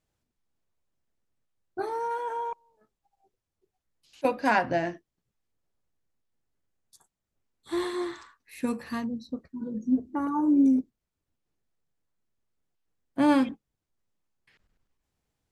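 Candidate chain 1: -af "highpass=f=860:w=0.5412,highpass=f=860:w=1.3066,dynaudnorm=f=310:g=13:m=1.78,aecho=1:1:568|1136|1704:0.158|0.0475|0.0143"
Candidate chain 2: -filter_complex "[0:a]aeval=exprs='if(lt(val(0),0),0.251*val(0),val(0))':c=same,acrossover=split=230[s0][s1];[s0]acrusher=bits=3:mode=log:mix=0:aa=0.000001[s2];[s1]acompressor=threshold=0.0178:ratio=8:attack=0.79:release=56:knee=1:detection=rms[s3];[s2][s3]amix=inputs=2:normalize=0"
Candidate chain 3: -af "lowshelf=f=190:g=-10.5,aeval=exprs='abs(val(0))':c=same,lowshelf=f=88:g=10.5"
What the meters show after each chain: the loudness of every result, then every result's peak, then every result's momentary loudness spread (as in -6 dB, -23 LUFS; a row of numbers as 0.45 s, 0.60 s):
-31.0 LUFS, -37.5 LUFS, -35.0 LUFS; -8.5 dBFS, -19.0 dBFS, -7.0 dBFS; 21 LU, 17 LU, 17 LU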